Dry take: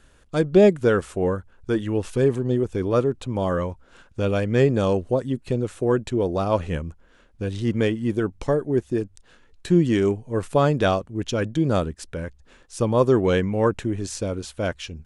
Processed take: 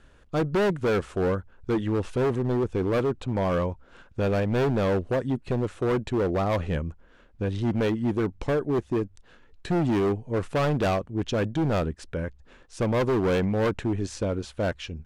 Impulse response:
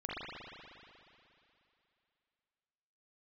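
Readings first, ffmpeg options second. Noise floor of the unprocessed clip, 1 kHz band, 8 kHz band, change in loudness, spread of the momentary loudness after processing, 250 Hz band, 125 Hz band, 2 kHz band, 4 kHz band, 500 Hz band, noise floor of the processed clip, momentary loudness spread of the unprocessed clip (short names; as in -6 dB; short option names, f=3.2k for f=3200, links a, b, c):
-55 dBFS, -2.5 dB, n/a, -4.0 dB, 8 LU, -3.5 dB, -3.0 dB, -2.0 dB, -3.5 dB, -4.5 dB, -55 dBFS, 12 LU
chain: -af "aemphasis=mode=reproduction:type=50fm,volume=20.5dB,asoftclip=hard,volume=-20.5dB"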